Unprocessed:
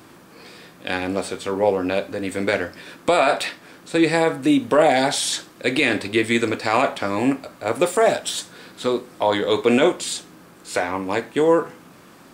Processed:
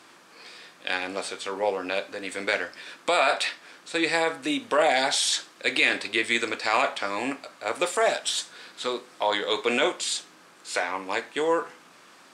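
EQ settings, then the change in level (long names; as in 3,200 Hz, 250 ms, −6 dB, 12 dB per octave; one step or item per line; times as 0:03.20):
high-pass filter 1,100 Hz 6 dB per octave
high-frequency loss of the air 77 metres
high-shelf EQ 6,100 Hz +9 dB
0.0 dB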